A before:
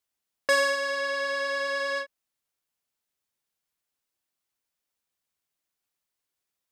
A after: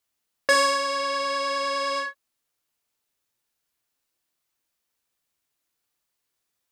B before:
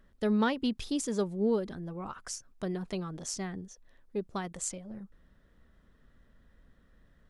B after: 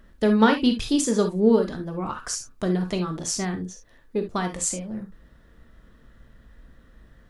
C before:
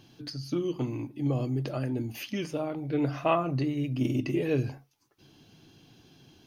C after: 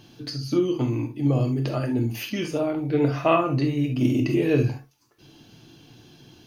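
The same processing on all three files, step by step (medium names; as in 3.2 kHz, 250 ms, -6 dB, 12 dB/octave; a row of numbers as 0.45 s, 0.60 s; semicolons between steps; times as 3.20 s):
gated-style reverb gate 90 ms flat, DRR 4.5 dB; normalise loudness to -24 LUFS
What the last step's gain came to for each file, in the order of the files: +3.5 dB, +9.0 dB, +5.0 dB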